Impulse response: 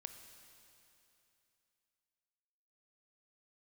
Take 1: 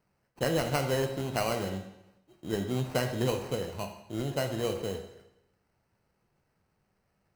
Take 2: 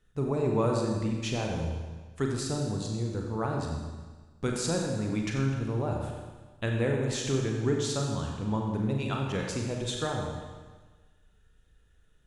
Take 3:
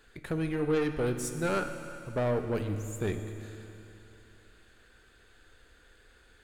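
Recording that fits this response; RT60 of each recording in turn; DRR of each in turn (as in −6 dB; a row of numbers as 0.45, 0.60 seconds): 3; 0.90, 1.4, 2.9 seconds; 4.5, 0.0, 7.0 decibels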